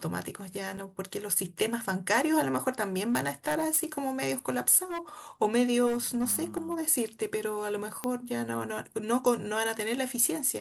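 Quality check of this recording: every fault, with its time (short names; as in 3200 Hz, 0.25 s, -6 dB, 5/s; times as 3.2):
0.77–0.78 gap 5.8 ms
2.97–4.08 clipped -22.5 dBFS
4.9–5 clipped -30.5 dBFS
5.86–6.81 clipped -24.5 dBFS
8.04 pop -16 dBFS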